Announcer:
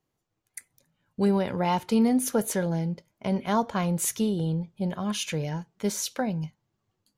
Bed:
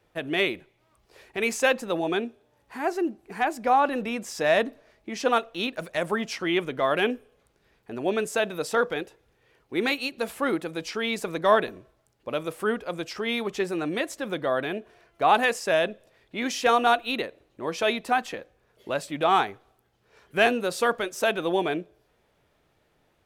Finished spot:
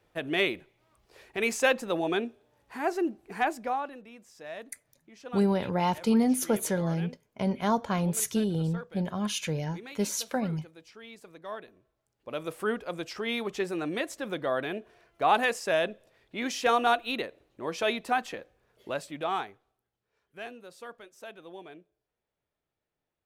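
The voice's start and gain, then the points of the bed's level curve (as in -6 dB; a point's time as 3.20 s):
4.15 s, -1.5 dB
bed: 3.49 s -2 dB
4.03 s -19.5 dB
11.66 s -19.5 dB
12.49 s -3.5 dB
18.84 s -3.5 dB
20.20 s -20.5 dB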